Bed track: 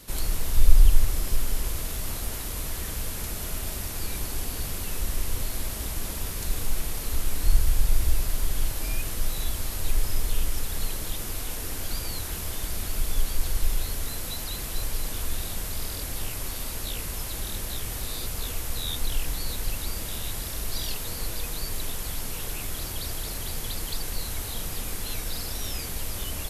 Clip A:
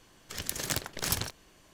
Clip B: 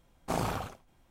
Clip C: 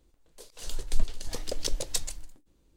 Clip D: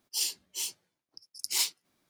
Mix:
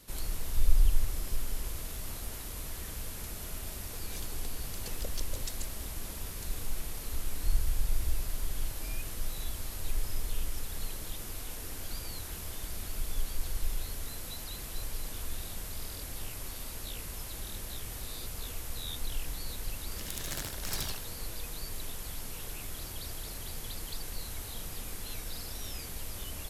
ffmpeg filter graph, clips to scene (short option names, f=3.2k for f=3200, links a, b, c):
-filter_complex "[0:a]volume=-8dB[a];[3:a]acompressor=threshold=-30dB:ratio=6:attack=3.2:release=140:knee=1:detection=peak[b];[1:a]aecho=1:1:72.89|154.5:0.891|0.447[c];[b]atrim=end=2.76,asetpts=PTS-STARTPTS,volume=-4dB,afade=t=in:d=0.004:c=hsin,afade=t=out:st=2.756:d=0.004:c=hsin,adelay=155673S[d];[c]atrim=end=1.73,asetpts=PTS-STARTPTS,volume=-9.5dB,afade=t=in:d=0.004:c=hsin,afade=t=out:st=1.726:d=0.004:c=hsin,adelay=19610[e];[a][d][e]amix=inputs=3:normalize=0"